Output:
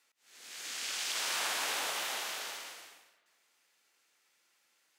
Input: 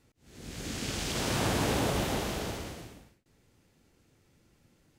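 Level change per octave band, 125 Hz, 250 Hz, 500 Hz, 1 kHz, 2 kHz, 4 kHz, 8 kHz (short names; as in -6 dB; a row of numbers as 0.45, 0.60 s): under -35 dB, -24.5 dB, -13.5 dB, -4.5 dB, +0.5 dB, +1.0 dB, +1.0 dB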